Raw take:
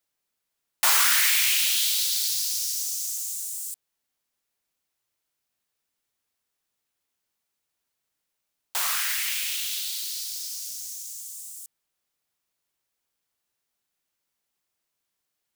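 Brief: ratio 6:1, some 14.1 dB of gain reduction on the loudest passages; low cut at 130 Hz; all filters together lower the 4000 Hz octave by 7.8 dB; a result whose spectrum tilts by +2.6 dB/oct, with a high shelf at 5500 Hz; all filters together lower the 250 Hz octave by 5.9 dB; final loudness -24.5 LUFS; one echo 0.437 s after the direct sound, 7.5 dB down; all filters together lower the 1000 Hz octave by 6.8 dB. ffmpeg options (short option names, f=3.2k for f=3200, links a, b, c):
-af "highpass=130,equalizer=f=250:t=o:g=-8,equalizer=f=1k:t=o:g=-8,equalizer=f=4k:t=o:g=-8,highshelf=f=5.5k:g=-4,acompressor=threshold=-37dB:ratio=6,aecho=1:1:437:0.422,volume=13dB"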